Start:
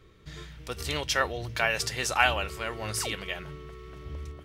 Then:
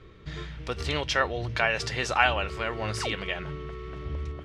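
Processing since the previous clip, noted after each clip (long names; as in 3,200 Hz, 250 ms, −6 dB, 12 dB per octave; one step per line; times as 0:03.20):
Bessel low-pass filter 3,600 Hz, order 2
in parallel at +0.5 dB: downward compressor, threshold −36 dBFS, peak gain reduction 17.5 dB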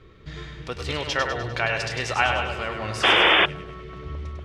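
echo with a time of its own for lows and highs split 460 Hz, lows 188 ms, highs 100 ms, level −5.5 dB
sound drawn into the spectrogram noise, 0:03.03–0:03.46, 300–3,600 Hz −17 dBFS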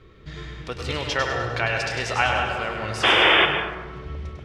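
dense smooth reverb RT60 1.1 s, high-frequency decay 0.45×, pre-delay 115 ms, DRR 6 dB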